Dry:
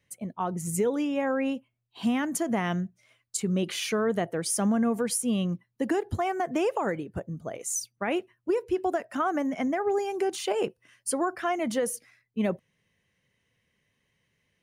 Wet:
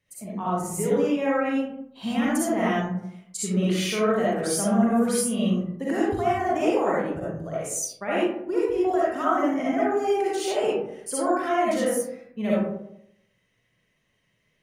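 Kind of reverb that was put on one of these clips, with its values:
comb and all-pass reverb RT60 0.77 s, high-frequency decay 0.4×, pre-delay 20 ms, DRR −8 dB
level −4.5 dB

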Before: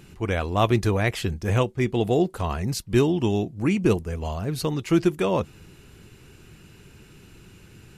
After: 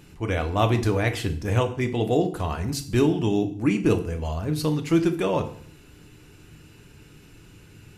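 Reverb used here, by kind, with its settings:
feedback delay network reverb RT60 0.55 s, low-frequency decay 1.25×, high-frequency decay 0.9×, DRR 6 dB
level −1.5 dB

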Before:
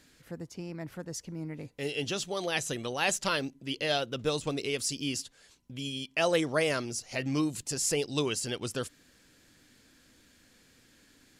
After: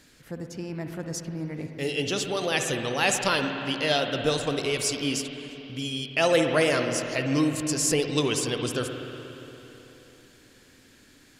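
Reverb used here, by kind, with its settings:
spring reverb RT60 3.5 s, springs 55/59 ms, chirp 30 ms, DRR 4.5 dB
level +4.5 dB

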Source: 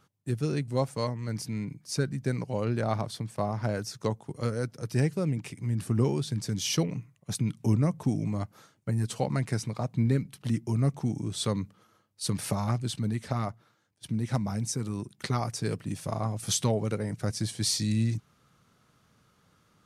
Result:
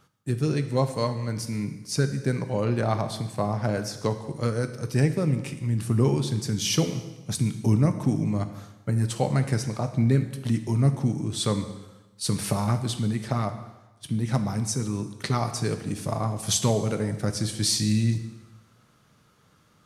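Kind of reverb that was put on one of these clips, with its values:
dense smooth reverb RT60 1.1 s, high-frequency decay 0.95×, DRR 8 dB
level +3.5 dB

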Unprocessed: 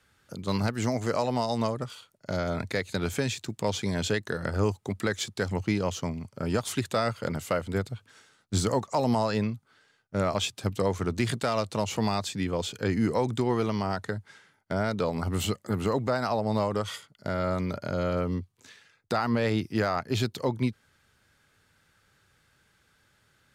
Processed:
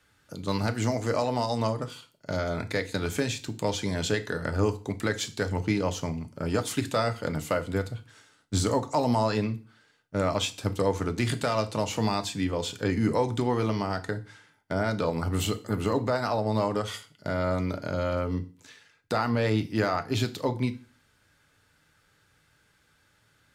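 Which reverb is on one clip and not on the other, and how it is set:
feedback delay network reverb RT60 0.37 s, low-frequency decay 1.2×, high-frequency decay 1×, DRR 8 dB

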